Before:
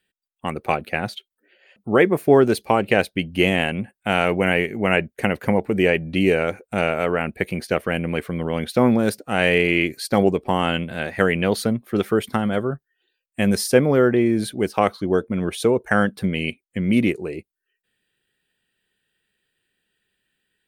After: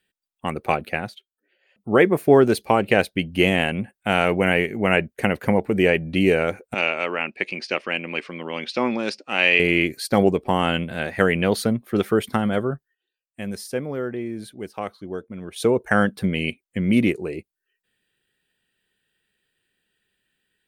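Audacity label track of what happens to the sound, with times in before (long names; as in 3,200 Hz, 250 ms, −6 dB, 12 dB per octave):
0.900000	1.950000	duck −9.5 dB, fades 0.24 s
6.740000	9.600000	loudspeaker in its box 350–6,600 Hz, peaks and dips at 460 Hz −7 dB, 690 Hz −6 dB, 1,500 Hz −4 dB, 2,600 Hz +8 dB, 5,000 Hz +7 dB
12.460000	16.050000	duck −11.5 dB, fades 0.49 s logarithmic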